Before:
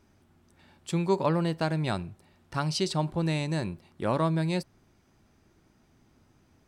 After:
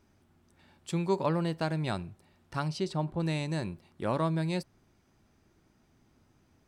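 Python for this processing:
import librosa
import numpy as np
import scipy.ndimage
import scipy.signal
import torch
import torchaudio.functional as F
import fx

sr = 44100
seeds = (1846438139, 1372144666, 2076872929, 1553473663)

y = fx.high_shelf(x, sr, hz=2400.0, db=-9.5, at=(2.68, 3.2))
y = F.gain(torch.from_numpy(y), -3.0).numpy()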